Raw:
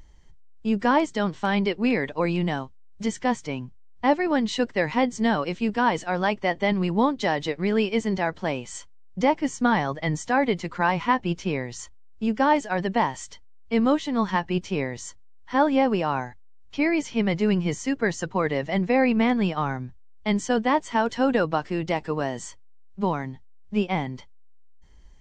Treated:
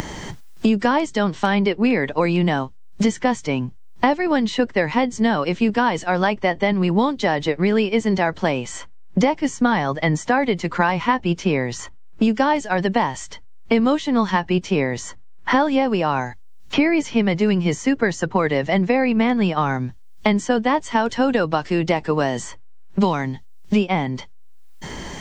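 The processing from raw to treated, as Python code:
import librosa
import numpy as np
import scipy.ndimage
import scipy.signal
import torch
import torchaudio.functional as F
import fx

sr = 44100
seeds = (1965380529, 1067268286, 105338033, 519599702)

y = fx.band_squash(x, sr, depth_pct=100)
y = y * librosa.db_to_amplitude(4.0)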